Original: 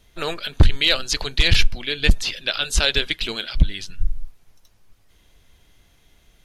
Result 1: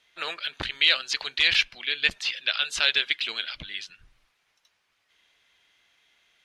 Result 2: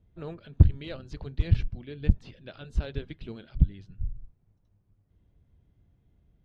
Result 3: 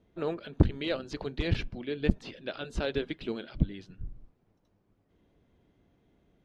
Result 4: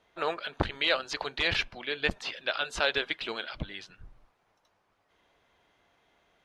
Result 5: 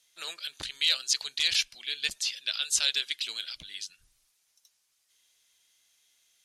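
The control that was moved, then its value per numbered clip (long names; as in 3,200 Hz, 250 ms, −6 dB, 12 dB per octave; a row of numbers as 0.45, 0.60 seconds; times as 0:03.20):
resonant band-pass, frequency: 2,300, 110, 270, 890, 7,600 Hertz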